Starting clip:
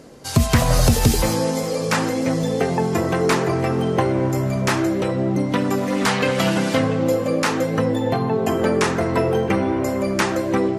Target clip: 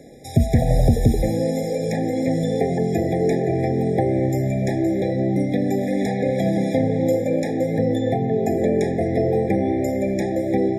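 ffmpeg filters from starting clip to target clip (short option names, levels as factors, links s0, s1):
-filter_complex "[0:a]acrossover=split=320|1100[s0][s1][s2];[s2]acompressor=threshold=0.0178:ratio=6[s3];[s0][s1][s3]amix=inputs=3:normalize=0,afftfilt=real='re*eq(mod(floor(b*sr/1024/820),2),0)':imag='im*eq(mod(floor(b*sr/1024/820),2),0)':win_size=1024:overlap=0.75"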